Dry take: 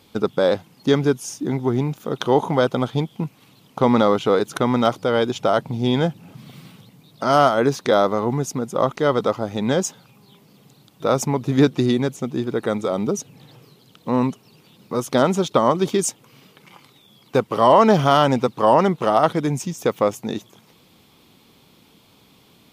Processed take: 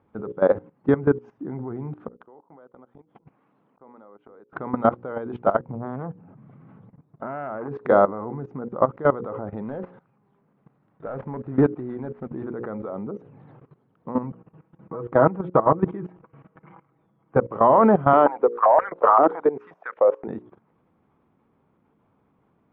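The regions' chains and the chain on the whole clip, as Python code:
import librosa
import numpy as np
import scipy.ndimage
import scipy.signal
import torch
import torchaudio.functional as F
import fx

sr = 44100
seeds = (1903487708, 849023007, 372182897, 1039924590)

y = fx.chain(x, sr, fx.highpass(hz=230.0, slope=12),
    fx.gate_flip(shuts_db=-15.0, range_db=-31),
    fx.over_compress(threshold_db=-41.0, ratio=-0.5), at=(2.08, 4.53))
y = fx.chain(y, sr, fx.spacing_loss(db_at_10k=23),
    fx.transformer_sat(knee_hz=1100.0), at=(5.72, 7.68))
y = fx.chain(y, sr, fx.cvsd(bps=32000),
    fx.low_shelf(hz=160.0, db=-2.5), at=(9.62, 12.43))
y = fx.chain(y, sr, fx.lowpass(hz=2600.0, slope=12),
    fx.peak_eq(hz=97.0, db=3.5, octaves=0.47),
    fx.comb(ms=6.2, depth=0.56), at=(14.23, 17.38))
y = fx.chain(y, sr, fx.overload_stage(gain_db=6.5),
    fx.filter_held_highpass(hz=7.6, low_hz=350.0, high_hz=1600.0), at=(18.13, 20.28))
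y = scipy.signal.sosfilt(scipy.signal.butter(4, 1600.0, 'lowpass', fs=sr, output='sos'), y)
y = fx.hum_notches(y, sr, base_hz=60, count=9)
y = fx.level_steps(y, sr, step_db=17)
y = y * 10.0 ** (2.5 / 20.0)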